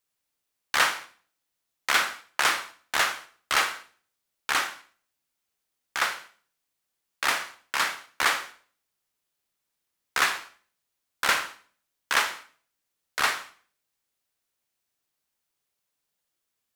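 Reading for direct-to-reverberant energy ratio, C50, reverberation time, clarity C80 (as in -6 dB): 10.0 dB, 13.5 dB, 0.45 s, 18.0 dB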